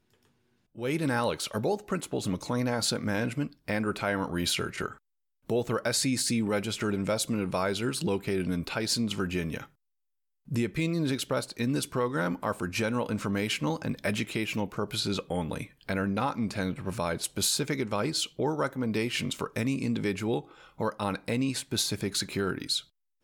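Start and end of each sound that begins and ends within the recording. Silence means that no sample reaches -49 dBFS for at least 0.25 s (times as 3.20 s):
0.75–4.98 s
5.50–9.66 s
10.48–22.85 s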